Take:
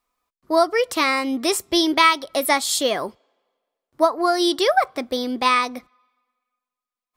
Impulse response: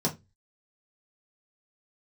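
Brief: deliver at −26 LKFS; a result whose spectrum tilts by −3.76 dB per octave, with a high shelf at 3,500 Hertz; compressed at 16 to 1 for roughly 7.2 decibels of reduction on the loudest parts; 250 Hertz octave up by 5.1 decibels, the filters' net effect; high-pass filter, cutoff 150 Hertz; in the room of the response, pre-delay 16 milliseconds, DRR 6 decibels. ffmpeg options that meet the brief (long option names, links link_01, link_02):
-filter_complex "[0:a]highpass=150,equalizer=frequency=250:width_type=o:gain=7.5,highshelf=frequency=3500:gain=-7.5,acompressor=threshold=-18dB:ratio=16,asplit=2[link_01][link_02];[1:a]atrim=start_sample=2205,adelay=16[link_03];[link_02][link_03]afir=irnorm=-1:irlink=0,volume=-14dB[link_04];[link_01][link_04]amix=inputs=2:normalize=0,volume=-5dB"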